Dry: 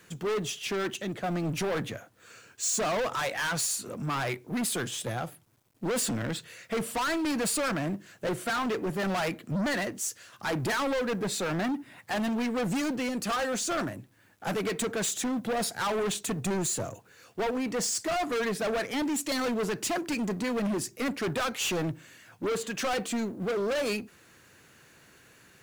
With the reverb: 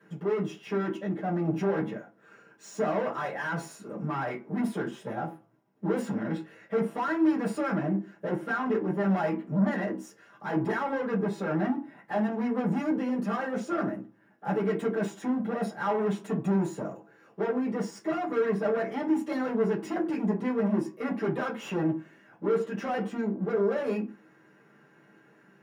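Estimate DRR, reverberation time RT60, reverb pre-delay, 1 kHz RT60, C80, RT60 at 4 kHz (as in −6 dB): −7.5 dB, 0.40 s, 3 ms, 0.40 s, 18.0 dB, 0.20 s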